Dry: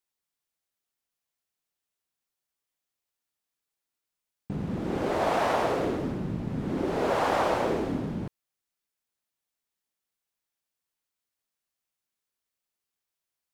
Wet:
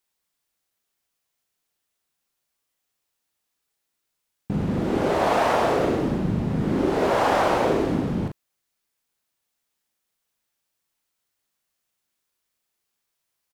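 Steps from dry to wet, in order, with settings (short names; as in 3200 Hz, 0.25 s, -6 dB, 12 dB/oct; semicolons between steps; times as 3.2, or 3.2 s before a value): in parallel at -2.5 dB: vocal rider 0.5 s; on the sum: doubler 39 ms -5 dB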